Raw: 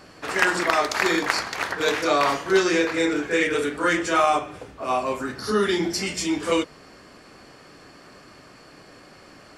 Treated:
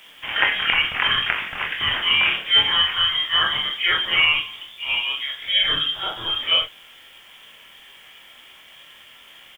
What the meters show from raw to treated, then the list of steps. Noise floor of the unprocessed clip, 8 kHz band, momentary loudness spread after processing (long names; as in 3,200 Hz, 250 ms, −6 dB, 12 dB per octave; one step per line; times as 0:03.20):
−49 dBFS, below −20 dB, 9 LU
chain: voice inversion scrambler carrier 3,500 Hz
bit-depth reduction 10 bits, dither triangular
ambience of single reflections 25 ms −5.5 dB, 45 ms −10 dB